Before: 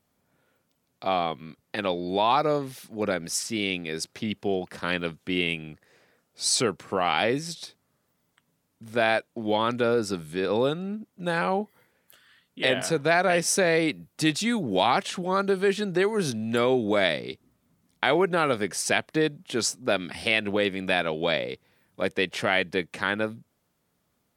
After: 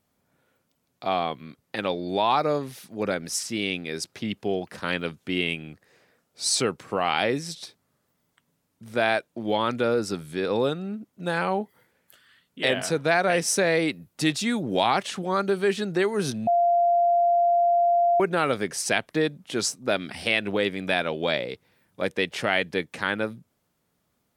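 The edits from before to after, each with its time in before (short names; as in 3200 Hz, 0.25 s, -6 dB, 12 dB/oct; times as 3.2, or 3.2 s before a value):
16.47–18.2 bleep 693 Hz -17 dBFS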